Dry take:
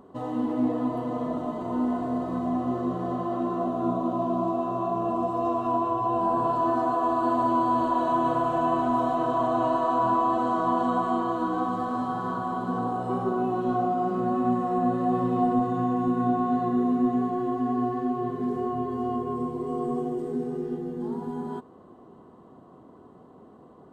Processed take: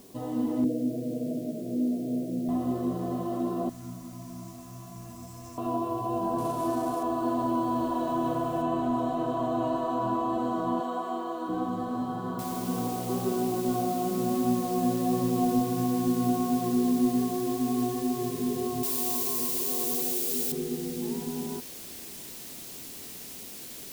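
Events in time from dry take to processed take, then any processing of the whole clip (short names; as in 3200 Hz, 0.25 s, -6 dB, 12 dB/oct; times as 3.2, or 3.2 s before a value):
0.64–2.49 Chebyshev band-pass 110–630 Hz, order 5
3.69–5.58 EQ curve 100 Hz 0 dB, 270 Hz -14 dB, 390 Hz -24 dB, 830 Hz -17 dB, 1200 Hz -11 dB, 2200 Hz +6 dB, 3500 Hz -23 dB, 5100 Hz +13 dB
6.38–7.03 CVSD 64 kbps
8.62 noise floor step -56 dB -69 dB
10.8–11.49 HPF 410 Hz
12.39 noise floor step -69 dB -42 dB
18.83–20.52 tilt +3.5 dB/oct
whole clip: bell 1200 Hz -8.5 dB 1.7 oct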